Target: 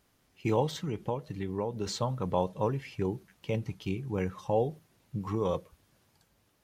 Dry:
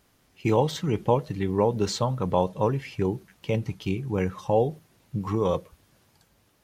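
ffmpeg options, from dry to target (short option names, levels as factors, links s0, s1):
-filter_complex "[0:a]asettb=1/sr,asplit=3[s0][s1][s2];[s0]atrim=end=0.744[s3];[s1]atrim=start=0.74:end=1.86,asetpts=PTS-STARTPTS,afade=t=in:d=0.004:c=qsin,afade=t=out:st=1.116:d=0.004:c=qsin,acompressor=threshold=0.0447:ratio=2[s4];[s2]atrim=start=1.856[s5];[s3][s4]acrossfade=d=0.004:c1=hsin:c2=qsin[s6];[s6][s5]acrossfade=d=0.004:c1=qsin:c2=hsin,volume=0.531"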